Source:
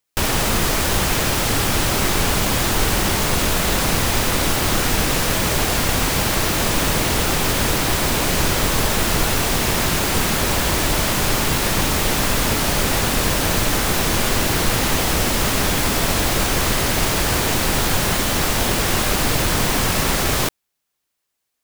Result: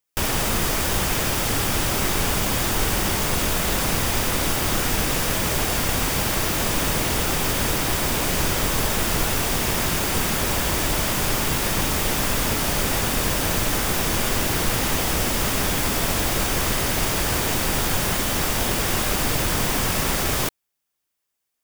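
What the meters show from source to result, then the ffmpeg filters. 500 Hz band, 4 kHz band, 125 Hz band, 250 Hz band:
-4.0 dB, -4.0 dB, -4.0 dB, -4.0 dB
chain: -af "highshelf=f=11k:g=3.5,bandreject=f=4.1k:w=18,volume=-4dB"

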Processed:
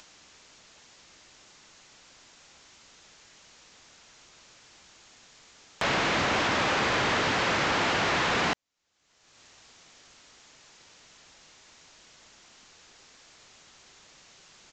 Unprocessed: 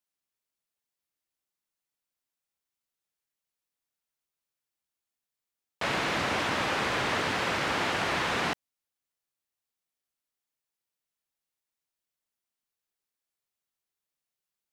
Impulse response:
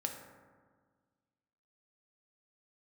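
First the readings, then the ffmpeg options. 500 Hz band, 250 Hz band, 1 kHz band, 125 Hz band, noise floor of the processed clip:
+3.0 dB, +3.0 dB, +3.0 dB, +3.0 dB, -61 dBFS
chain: -af "aresample=16000,asoftclip=type=tanh:threshold=-27dB,aresample=44100,acompressor=mode=upward:threshold=-36dB:ratio=2.5,volume=6dB"

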